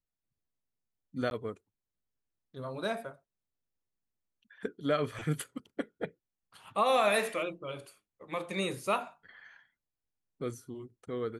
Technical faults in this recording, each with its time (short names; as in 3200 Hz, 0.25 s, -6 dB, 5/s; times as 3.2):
1.3–1.31 gap 11 ms